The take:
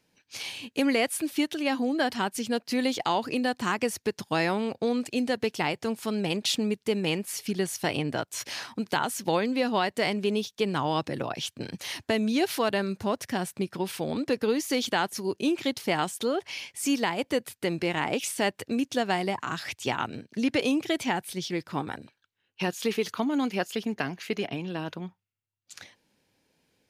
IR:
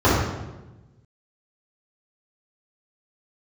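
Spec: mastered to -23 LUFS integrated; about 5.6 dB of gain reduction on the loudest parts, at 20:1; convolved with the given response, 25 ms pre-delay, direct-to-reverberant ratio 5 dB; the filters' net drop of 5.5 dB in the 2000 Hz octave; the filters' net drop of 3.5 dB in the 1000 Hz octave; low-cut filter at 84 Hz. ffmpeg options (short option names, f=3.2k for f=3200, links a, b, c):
-filter_complex "[0:a]highpass=84,equalizer=f=1k:t=o:g=-3.5,equalizer=f=2k:t=o:g=-6,acompressor=threshold=-27dB:ratio=20,asplit=2[a][b];[1:a]atrim=start_sample=2205,adelay=25[c];[b][c]afir=irnorm=-1:irlink=0,volume=-28.5dB[d];[a][d]amix=inputs=2:normalize=0,volume=7.5dB"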